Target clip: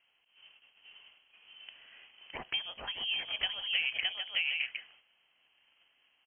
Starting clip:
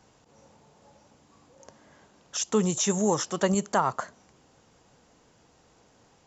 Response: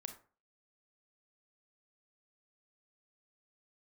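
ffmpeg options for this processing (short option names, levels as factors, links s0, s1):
-af "aecho=1:1:615|762:0.631|0.299,acompressor=threshold=0.0355:ratio=6,highpass=f=450:w=0.5412,highpass=f=450:w=1.3066,agate=range=0.282:threshold=0.00112:ratio=16:detection=peak,lowpass=f=3100:t=q:w=0.5098,lowpass=f=3100:t=q:w=0.6013,lowpass=f=3100:t=q:w=0.9,lowpass=f=3100:t=q:w=2.563,afreqshift=-3600,volume=1.33"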